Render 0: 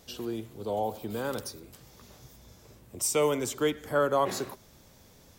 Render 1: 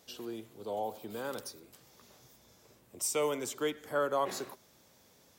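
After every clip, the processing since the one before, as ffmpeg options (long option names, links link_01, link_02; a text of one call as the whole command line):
ffmpeg -i in.wav -af "highpass=frequency=270:poles=1,volume=-4.5dB" out.wav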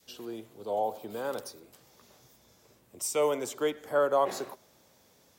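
ffmpeg -i in.wav -af "adynamicequalizer=threshold=0.00562:dfrequency=650:dqfactor=0.91:tfrequency=650:tqfactor=0.91:attack=5:release=100:ratio=0.375:range=3.5:mode=boostabove:tftype=bell" out.wav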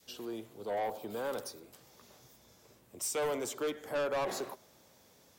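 ffmpeg -i in.wav -af "asoftclip=type=tanh:threshold=-29.5dB" out.wav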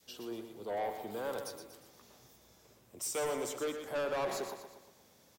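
ffmpeg -i in.wav -af "aecho=1:1:119|238|357|476|595:0.398|0.187|0.0879|0.0413|0.0194,volume=-2dB" out.wav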